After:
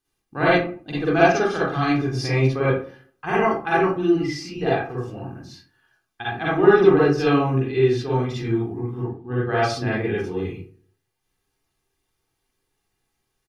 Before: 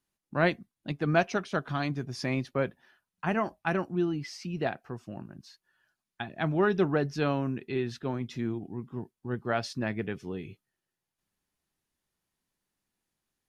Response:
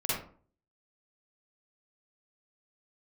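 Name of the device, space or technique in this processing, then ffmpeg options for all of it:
microphone above a desk: -filter_complex "[0:a]asettb=1/sr,asplit=3[s0][s1][s2];[s0]atrim=end=9.004[s3];[s1]atrim=start=9:end=9.52,asetpts=PTS-STARTPTS,afade=t=in:d=0.004:c=qsin,afade=t=out:st=0.516:d=0.004:c=qsin,highshelf=f=4600:t=q:w=1.5:g=-8.5[s4];[s2]atrim=start=9.516[s5];[s3][s4]acrossfade=d=0.004:c1=hsin:c2=qsin[s6];[s6][s5]acrossfade=d=0.004:c1=qsin:c2=hsin,aecho=1:1:2.5:0.61[s7];[1:a]atrim=start_sample=2205[s8];[s7][s8]afir=irnorm=-1:irlink=0,volume=1.12"

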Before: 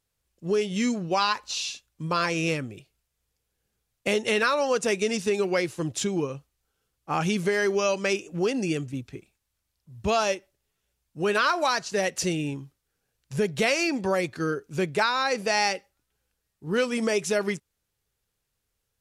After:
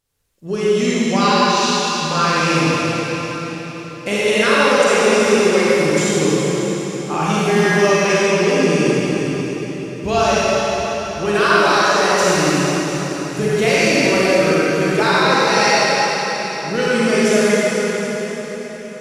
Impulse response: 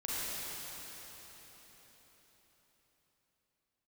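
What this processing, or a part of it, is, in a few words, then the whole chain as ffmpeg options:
cathedral: -filter_complex "[1:a]atrim=start_sample=2205[s0];[0:a][s0]afir=irnorm=-1:irlink=0,volume=2"

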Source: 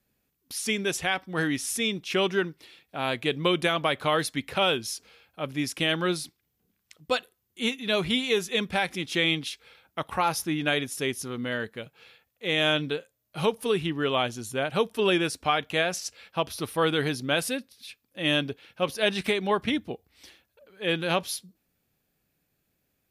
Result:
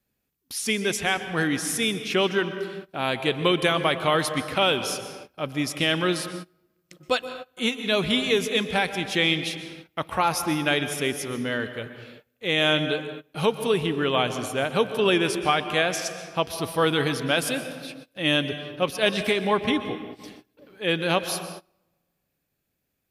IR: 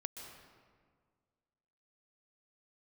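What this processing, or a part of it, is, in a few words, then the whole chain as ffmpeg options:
keyed gated reverb: -filter_complex "[0:a]asplit=3[s0][s1][s2];[1:a]atrim=start_sample=2205[s3];[s1][s3]afir=irnorm=-1:irlink=0[s4];[s2]apad=whole_len=1018930[s5];[s4][s5]sidechaingate=range=0.0631:threshold=0.00141:ratio=16:detection=peak,volume=1.5[s6];[s0][s6]amix=inputs=2:normalize=0,volume=0.668"

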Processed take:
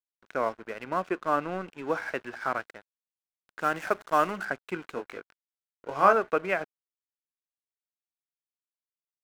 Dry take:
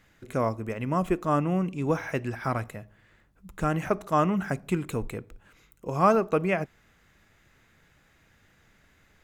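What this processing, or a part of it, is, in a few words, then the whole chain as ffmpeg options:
pocket radio on a weak battery: -filter_complex "[0:a]highpass=380,lowpass=4000,aeval=exprs='sgn(val(0))*max(abs(val(0))-0.00531,0)':c=same,equalizer=f=1500:t=o:w=0.3:g=8,asettb=1/sr,asplit=3[s0][s1][s2];[s0]atrim=end=3.614[s3];[s1]atrim=start=3.61:end=4.45,asetpts=PTS-STARTPTS,afade=t=in:d=0.004:c=qsin,afade=t=out:st=0.836:d=0.004:c=qsin,highshelf=f=5600:g=11.5[s4];[s2]atrim=start=4.446[s5];[s3][s4]acrossfade=d=0.004:c1=hsin:c2=qsin[s6];[s6][s5]acrossfade=d=0.004:c1=qsin:c2=hsin,asettb=1/sr,asplit=3[s7][s8][s9];[s7]atrim=end=4.954[s10];[s8]atrim=start=4.95:end=6.13,asetpts=PTS-STARTPTS,afade=t=in:d=0.004:c=qsin,afade=t=out:st=1.176:d=0.004:c=qsin,asplit=2[s11][s12];[s12]adelay=21,volume=0.562[s13];[s11][s13]amix=inputs=2:normalize=0,atrim=end_sample=52038[s14];[s9]atrim=start=6.126[s15];[s10][s14]acrossfade=d=0.004:c1=hsin:c2=qsin[s16];[s16][s15]acrossfade=d=0.004:c1=qsin:c2=hsin"

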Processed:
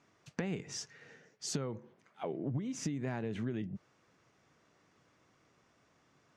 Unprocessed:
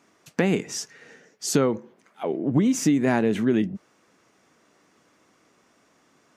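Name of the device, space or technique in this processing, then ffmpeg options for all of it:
jukebox: -af "lowpass=6400,lowshelf=f=170:t=q:w=1.5:g=7,acompressor=threshold=0.0501:ratio=6,volume=0.422"

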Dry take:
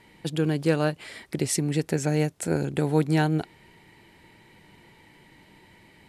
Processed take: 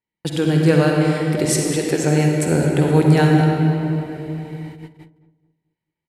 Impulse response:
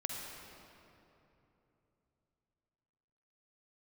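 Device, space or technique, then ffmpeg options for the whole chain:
cave: -filter_complex "[0:a]asettb=1/sr,asplit=3[s0][s1][s2];[s0]atrim=end=1.454[s3];[s1]atrim=start=1.45:end=2.04,asetpts=PTS-STARTPTS,afade=t=in:d=0.004:c=qsin,afade=t=out:st=0.586:d=0.004:c=qsin,highpass=f=290:w=0.5412,highpass=f=290:w=1.3066[s4];[s2]atrim=start=2.036[s5];[s3][s4]acrossfade=d=0.004:c1=hsin:c2=qsin[s6];[s6][s5]acrossfade=d=0.004:c1=qsin:c2=hsin,aecho=1:1:212:0.141[s7];[1:a]atrim=start_sample=2205[s8];[s7][s8]afir=irnorm=-1:irlink=0,agate=range=0.00891:threshold=0.00794:ratio=16:detection=peak,asplit=2[s9][s10];[s10]adelay=218,lowpass=f=1000:p=1,volume=0.2,asplit=2[s11][s12];[s12]adelay=218,lowpass=f=1000:p=1,volume=0.41,asplit=2[s13][s14];[s14]adelay=218,lowpass=f=1000:p=1,volume=0.41,asplit=2[s15][s16];[s16]adelay=218,lowpass=f=1000:p=1,volume=0.41[s17];[s9][s11][s13][s15][s17]amix=inputs=5:normalize=0,volume=2.24"

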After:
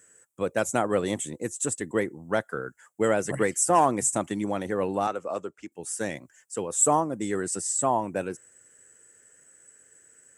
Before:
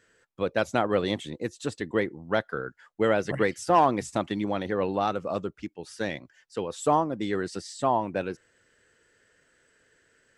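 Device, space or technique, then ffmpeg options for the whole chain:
budget condenser microphone: -filter_complex "[0:a]asettb=1/sr,asplit=3[s0][s1][s2];[s0]atrim=end=5.074[s3];[s1]atrim=start=5.07:end=5.72,asetpts=PTS-STARTPTS,afade=t=in:d=0.004:c=qsin,afade=t=out:st=0.646:d=0.004:c=qsin,acrossover=split=320 5800:gain=0.251 1 0.224[s4][s5][s6];[s4][s5][s6]amix=inputs=3:normalize=0[s7];[s2]atrim=start=5.716[s8];[s3][s7]acrossfade=d=0.004:c1=hsin:c2=qsin[s9];[s9][s8]acrossfade=d=0.004:c1=qsin:c2=hsin,highpass=82,highshelf=f=5900:t=q:w=3:g=12"

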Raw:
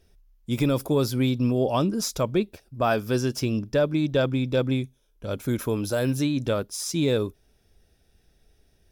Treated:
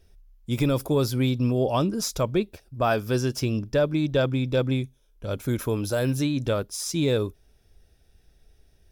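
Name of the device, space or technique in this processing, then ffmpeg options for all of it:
low shelf boost with a cut just above: -af "lowshelf=f=94:g=5.5,equalizer=f=220:t=o:w=0.91:g=-2.5"

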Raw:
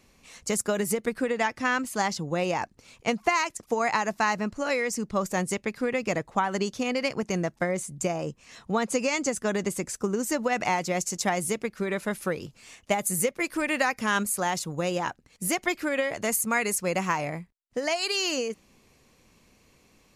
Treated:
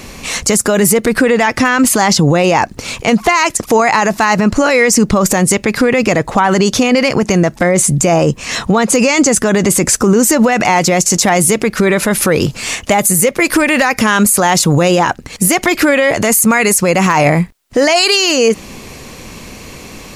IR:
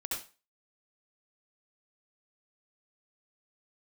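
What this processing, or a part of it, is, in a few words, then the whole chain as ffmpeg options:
loud club master: -af "acompressor=threshold=0.0224:ratio=1.5,asoftclip=type=hard:threshold=0.112,alimiter=level_in=31.6:limit=0.891:release=50:level=0:latency=1,volume=0.891"

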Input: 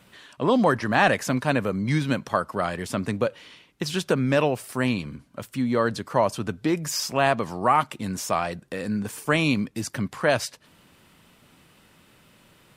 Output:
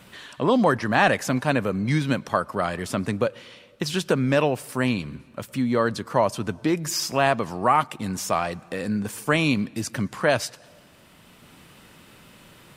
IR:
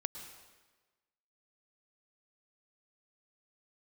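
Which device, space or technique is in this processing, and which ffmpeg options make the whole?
ducked reverb: -filter_complex "[0:a]asplit=3[s0][s1][s2];[1:a]atrim=start_sample=2205[s3];[s1][s3]afir=irnorm=-1:irlink=0[s4];[s2]apad=whole_len=562887[s5];[s4][s5]sidechaincompress=threshold=0.00891:ratio=6:attack=29:release=721,volume=1.12[s6];[s0][s6]amix=inputs=2:normalize=0"

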